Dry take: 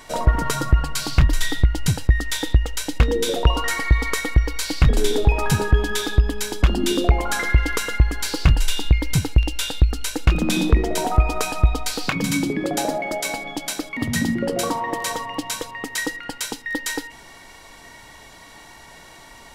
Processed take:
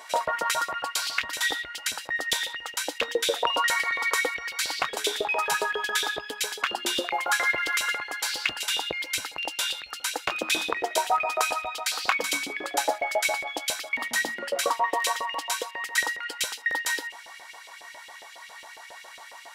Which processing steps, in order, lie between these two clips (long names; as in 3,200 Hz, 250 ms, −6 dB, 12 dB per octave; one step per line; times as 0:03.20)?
auto-filter high-pass saw up 7.3 Hz 490–3,300 Hz
0:07.01–0:07.90: log-companded quantiser 8 bits
level −2.5 dB